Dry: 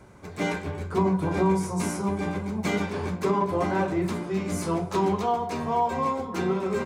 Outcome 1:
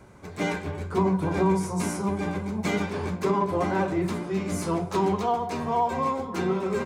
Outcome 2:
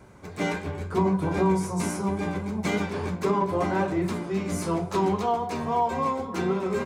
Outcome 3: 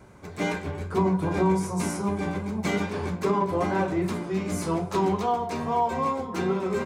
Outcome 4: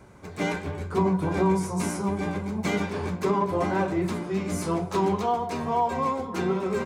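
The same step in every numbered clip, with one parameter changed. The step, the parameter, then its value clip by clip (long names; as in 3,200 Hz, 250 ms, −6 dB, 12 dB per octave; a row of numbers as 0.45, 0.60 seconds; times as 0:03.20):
pitch vibrato, speed: 15, 3.7, 2.5, 8.5 Hertz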